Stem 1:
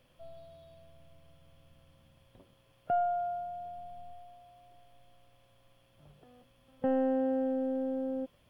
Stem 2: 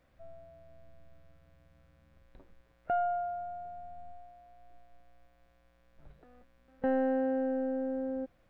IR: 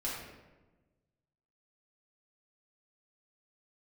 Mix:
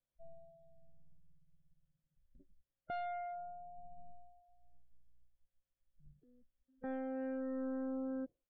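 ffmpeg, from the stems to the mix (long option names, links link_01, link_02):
-filter_complex "[0:a]asoftclip=type=hard:threshold=-34dB,volume=-7dB[link_01];[1:a]adelay=1.4,volume=-5.5dB[link_02];[link_01][link_02]amix=inputs=2:normalize=0,afftdn=noise_reduction=28:noise_floor=-50,alimiter=level_in=10dB:limit=-24dB:level=0:latency=1:release=377,volume=-10dB"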